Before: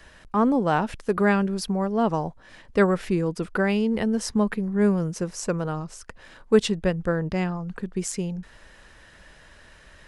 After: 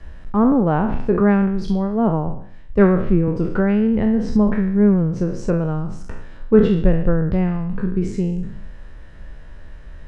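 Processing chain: spectral sustain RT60 0.68 s; low-pass that closes with the level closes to 2.7 kHz, closed at -19 dBFS; tilt EQ -3.5 dB/octave; 1.20–3.28 s: three bands expanded up and down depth 40%; trim -1 dB

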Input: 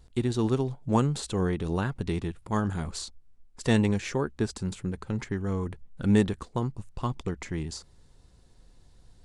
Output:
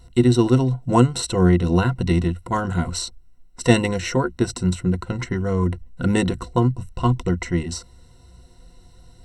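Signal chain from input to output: rippled EQ curve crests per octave 2, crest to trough 15 dB; trim +6.5 dB

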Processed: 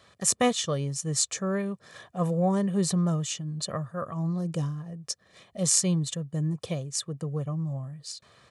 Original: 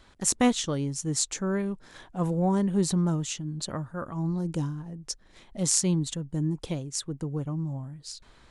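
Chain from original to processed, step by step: high-pass 98 Hz 24 dB/octave; comb 1.7 ms, depth 61%

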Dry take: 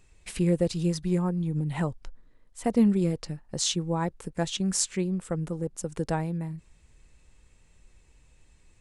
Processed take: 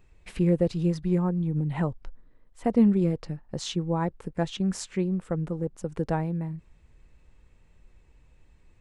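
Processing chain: peaking EQ 9.3 kHz -14.5 dB 2.2 oct; trim +1.5 dB

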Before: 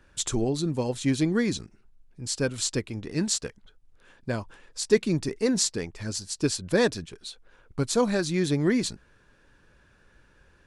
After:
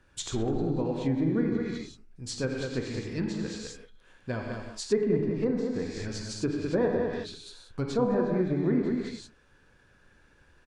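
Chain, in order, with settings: delay 205 ms -5 dB; gated-style reverb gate 200 ms flat, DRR 1.5 dB; low-pass that closes with the level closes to 1.1 kHz, closed at -18.5 dBFS; trim -4.5 dB

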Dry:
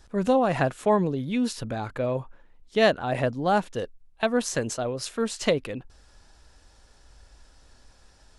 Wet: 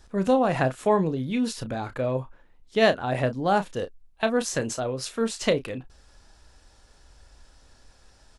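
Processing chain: doubling 31 ms -11 dB

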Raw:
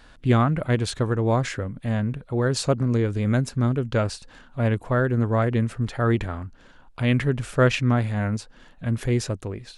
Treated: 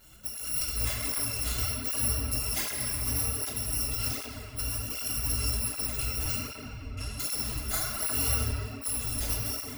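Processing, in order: bit-reversed sample order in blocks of 256 samples; compressor with a negative ratio -24 dBFS, ratio -0.5; 6.39–7.20 s: distance through air 55 m; reverberation RT60 3.4 s, pre-delay 6 ms, DRR -5.5 dB; cancelling through-zero flanger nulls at 1.3 Hz, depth 6.6 ms; trim -5.5 dB

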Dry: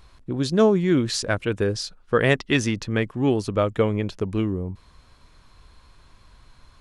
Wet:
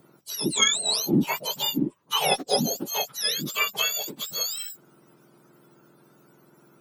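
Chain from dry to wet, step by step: spectrum inverted on a logarithmic axis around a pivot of 1.2 kHz; Chebyshev shaper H 2 -24 dB, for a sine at -7 dBFS

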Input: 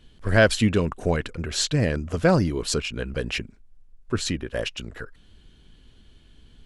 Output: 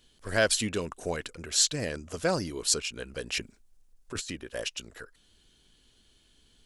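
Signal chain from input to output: tone controls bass -8 dB, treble +12 dB; 3.37–4.30 s: compressor with a negative ratio -27 dBFS, ratio -0.5; trim -7 dB

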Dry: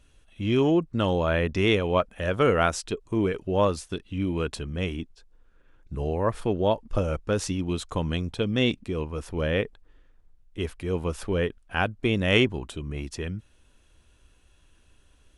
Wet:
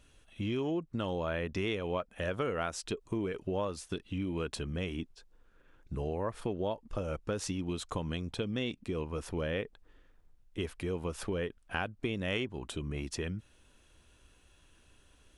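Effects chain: compression 5:1, threshold -31 dBFS, peak gain reduction 14.5 dB; bass shelf 86 Hz -6 dB

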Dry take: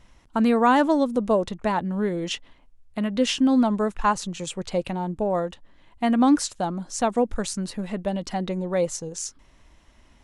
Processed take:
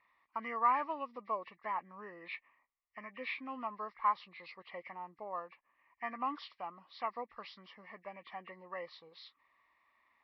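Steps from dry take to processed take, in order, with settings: knee-point frequency compression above 1.5 kHz 1.5:1; two resonant band-passes 1.5 kHz, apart 0.76 oct; trim -2.5 dB

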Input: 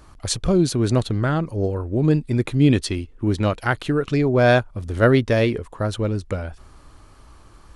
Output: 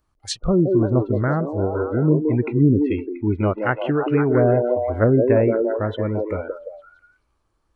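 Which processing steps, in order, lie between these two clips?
low-pass that closes with the level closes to 570 Hz, closed at -11.5 dBFS; repeats whose band climbs or falls 171 ms, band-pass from 420 Hz, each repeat 0.7 oct, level 0 dB; spectral noise reduction 23 dB

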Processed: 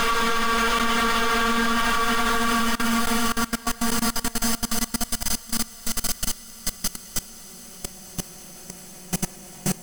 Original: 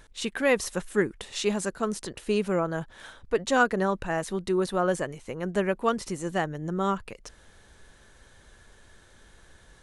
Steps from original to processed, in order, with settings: comb filter that takes the minimum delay 0.64 ms; treble shelf 9.3 kHz +7.5 dB; reverberation RT60 0.50 s, pre-delay 8 ms, DRR 14 dB; waveshaping leveller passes 5; peaking EQ 300 Hz -12 dB 2.3 oct; Paulstretch 38×, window 0.25 s, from 5.87 s; level held to a coarse grid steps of 21 dB

